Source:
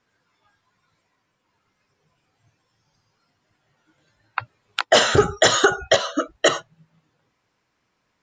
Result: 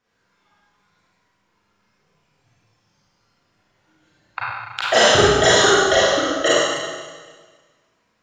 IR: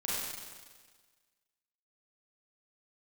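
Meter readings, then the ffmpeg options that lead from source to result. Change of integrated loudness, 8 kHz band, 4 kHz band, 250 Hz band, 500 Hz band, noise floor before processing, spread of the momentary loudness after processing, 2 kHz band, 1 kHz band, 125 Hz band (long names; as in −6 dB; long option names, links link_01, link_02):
+3.5 dB, +4.0 dB, +4.0 dB, +3.5 dB, +3.5 dB, −73 dBFS, 16 LU, +4.0 dB, +3.5 dB, +2.5 dB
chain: -filter_complex "[1:a]atrim=start_sample=2205[link_01];[0:a][link_01]afir=irnorm=-1:irlink=0,volume=-1.5dB"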